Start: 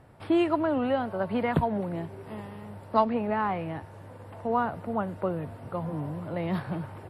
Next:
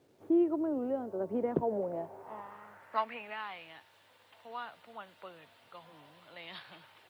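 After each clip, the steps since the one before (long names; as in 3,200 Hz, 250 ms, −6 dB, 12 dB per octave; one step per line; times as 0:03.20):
band-pass filter sweep 370 Hz → 3,500 Hz, 0:01.54–0:03.47
speech leveller within 4 dB 2 s
bit-depth reduction 12 bits, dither none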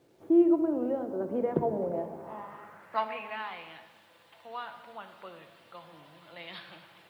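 rectangular room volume 1,100 cubic metres, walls mixed, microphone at 0.77 metres
level +2 dB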